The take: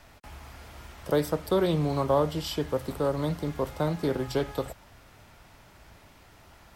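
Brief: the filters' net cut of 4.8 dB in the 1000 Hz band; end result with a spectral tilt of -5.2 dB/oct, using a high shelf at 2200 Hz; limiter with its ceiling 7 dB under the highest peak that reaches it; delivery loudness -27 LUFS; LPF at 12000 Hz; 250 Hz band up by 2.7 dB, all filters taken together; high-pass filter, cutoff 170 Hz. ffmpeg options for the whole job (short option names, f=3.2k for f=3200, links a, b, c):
-af "highpass=170,lowpass=12k,equalizer=f=250:t=o:g=5.5,equalizer=f=1k:t=o:g=-8,highshelf=f=2.2k:g=7,volume=3dB,alimiter=limit=-16dB:level=0:latency=1"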